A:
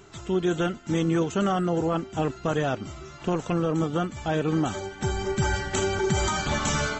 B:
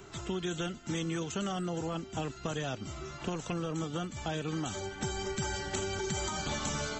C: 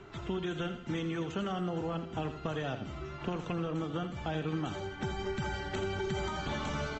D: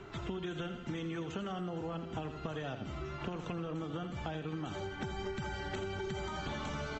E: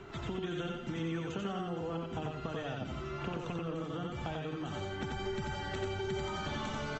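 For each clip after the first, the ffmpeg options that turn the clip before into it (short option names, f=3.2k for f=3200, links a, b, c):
-filter_complex "[0:a]acrossover=split=180|1000|2800[a][b][c][d];[a]acompressor=threshold=-41dB:ratio=4[e];[b]acompressor=threshold=-38dB:ratio=4[f];[c]acompressor=threshold=-47dB:ratio=4[g];[d]acompressor=threshold=-38dB:ratio=4[h];[e][f][g][h]amix=inputs=4:normalize=0"
-af "lowpass=3k,aecho=1:1:83|166|249|332:0.316|0.13|0.0532|0.0218"
-af "acompressor=threshold=-37dB:ratio=6,volume=1.5dB"
-af "aecho=1:1:91:0.708"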